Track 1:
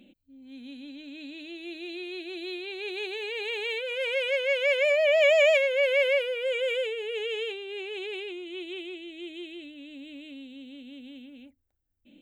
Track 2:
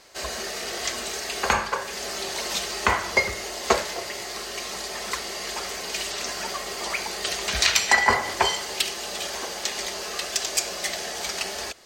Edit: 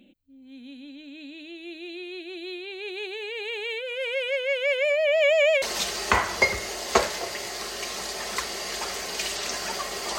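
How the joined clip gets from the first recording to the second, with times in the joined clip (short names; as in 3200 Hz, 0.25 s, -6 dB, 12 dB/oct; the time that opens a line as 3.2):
track 1
5.62 switch to track 2 from 2.37 s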